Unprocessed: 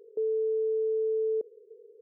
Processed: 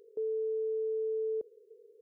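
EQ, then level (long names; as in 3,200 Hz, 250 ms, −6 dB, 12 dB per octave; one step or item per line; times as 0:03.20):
parametric band 480 Hz −8.5 dB 3 octaves
+3.5 dB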